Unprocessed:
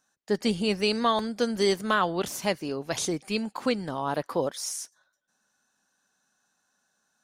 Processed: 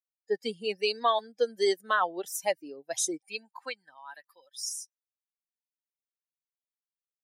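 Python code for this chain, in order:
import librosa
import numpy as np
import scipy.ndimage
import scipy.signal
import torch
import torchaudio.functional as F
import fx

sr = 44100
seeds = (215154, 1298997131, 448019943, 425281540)

y = fx.bin_expand(x, sr, power=2.0)
y = fx.dynamic_eq(y, sr, hz=9100.0, q=0.96, threshold_db=-51.0, ratio=4.0, max_db=8, at=(1.96, 3.22))
y = fx.filter_sweep_highpass(y, sr, from_hz=470.0, to_hz=3600.0, start_s=3.14, end_s=4.55, q=1.4)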